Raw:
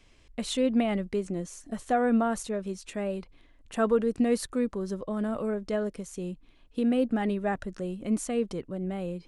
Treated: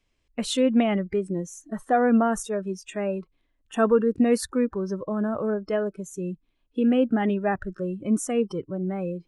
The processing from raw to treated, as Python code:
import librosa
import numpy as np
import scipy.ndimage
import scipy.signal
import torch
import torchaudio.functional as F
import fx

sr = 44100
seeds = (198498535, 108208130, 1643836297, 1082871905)

y = fx.noise_reduce_blind(x, sr, reduce_db=18)
y = F.gain(torch.from_numpy(y), 4.5).numpy()